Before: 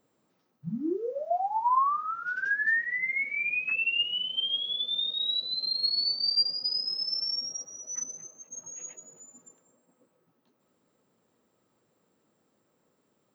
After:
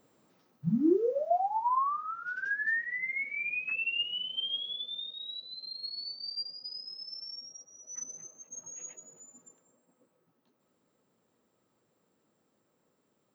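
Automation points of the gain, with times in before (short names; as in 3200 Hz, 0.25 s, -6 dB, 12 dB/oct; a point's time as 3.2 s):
0.94 s +5.5 dB
1.75 s -4.5 dB
4.59 s -4.5 dB
5.21 s -12 dB
7.65 s -12 dB
8.19 s -2.5 dB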